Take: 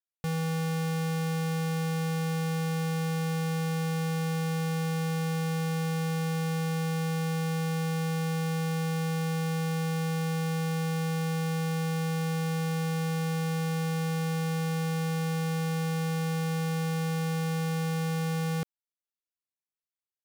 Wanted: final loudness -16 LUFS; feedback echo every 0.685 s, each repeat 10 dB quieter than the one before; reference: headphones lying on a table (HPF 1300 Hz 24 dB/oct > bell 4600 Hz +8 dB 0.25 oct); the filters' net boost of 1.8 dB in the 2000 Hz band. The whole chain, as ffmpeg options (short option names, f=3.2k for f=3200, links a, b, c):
-af "highpass=f=1.3k:w=0.5412,highpass=f=1.3k:w=1.3066,equalizer=f=2k:t=o:g=3,equalizer=f=4.6k:t=o:w=0.25:g=8,aecho=1:1:685|1370|2055|2740:0.316|0.101|0.0324|0.0104,volume=21.5dB"